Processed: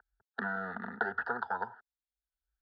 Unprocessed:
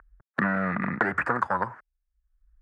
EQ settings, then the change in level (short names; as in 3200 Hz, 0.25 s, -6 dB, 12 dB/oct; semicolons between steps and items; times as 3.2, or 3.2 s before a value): speaker cabinet 240–4000 Hz, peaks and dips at 300 Hz -6 dB, 540 Hz -4 dB, 790 Hz -5 dB, 1200 Hz -10 dB, 1700 Hz -3 dB, 2400 Hz -9 dB; fixed phaser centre 580 Hz, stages 6; fixed phaser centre 1600 Hz, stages 8; +4.5 dB